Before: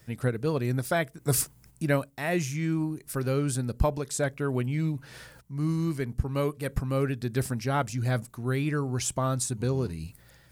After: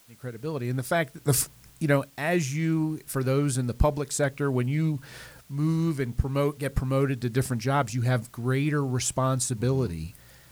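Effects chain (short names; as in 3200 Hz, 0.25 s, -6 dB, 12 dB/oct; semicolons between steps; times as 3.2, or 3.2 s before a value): opening faded in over 1.08 s; requantised 10-bit, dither triangular; Doppler distortion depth 0.15 ms; gain +2.5 dB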